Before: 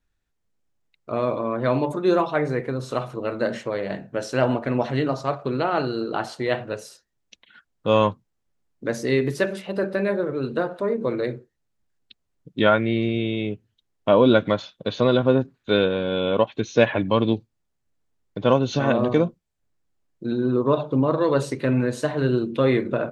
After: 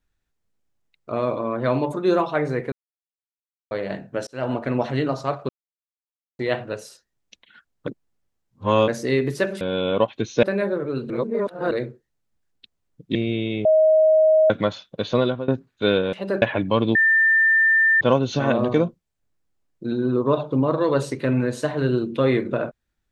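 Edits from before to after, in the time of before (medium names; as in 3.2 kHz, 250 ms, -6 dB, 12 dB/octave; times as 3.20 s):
2.72–3.71 s: mute
4.27–4.60 s: fade in linear
5.49–6.39 s: mute
7.87–8.88 s: reverse
9.61–9.90 s: swap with 16.00–16.82 s
10.57–11.18 s: reverse
12.62–13.02 s: delete
13.52–14.37 s: bleep 629 Hz -12 dBFS
15.04–15.35 s: fade out, to -20 dB
17.35–18.41 s: bleep 1.79 kHz -13.5 dBFS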